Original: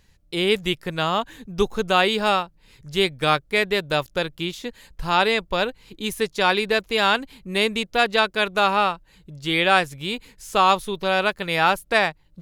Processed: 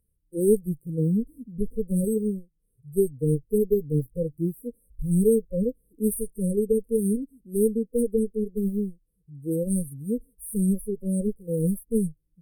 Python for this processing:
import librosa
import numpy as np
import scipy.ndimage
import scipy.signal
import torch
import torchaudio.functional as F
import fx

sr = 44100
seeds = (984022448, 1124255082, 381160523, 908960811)

y = fx.cheby_harmonics(x, sr, harmonics=(4,), levels_db=(-10,), full_scale_db=-3.5)
y = fx.high_shelf(y, sr, hz=2800.0, db=11.0)
y = fx.rider(y, sr, range_db=3, speed_s=0.5)
y = fx.hpss(y, sr, part='percussive', gain_db=-15)
y = fx.noise_reduce_blind(y, sr, reduce_db=15)
y = fx.brickwall_bandstop(y, sr, low_hz=540.0, high_hz=8200.0)
y = y * 10.0 ** (2.5 / 20.0)